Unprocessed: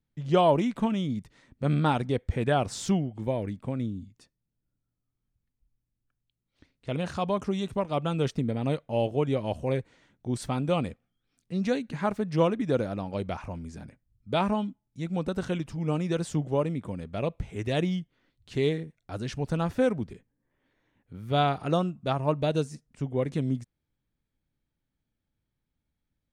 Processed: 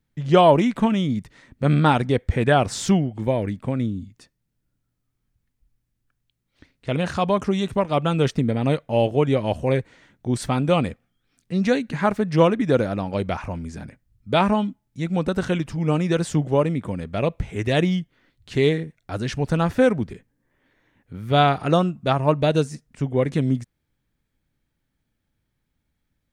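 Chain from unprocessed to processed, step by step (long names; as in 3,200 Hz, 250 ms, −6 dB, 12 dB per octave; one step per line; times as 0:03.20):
parametric band 1,800 Hz +3.5 dB 0.83 octaves
level +7 dB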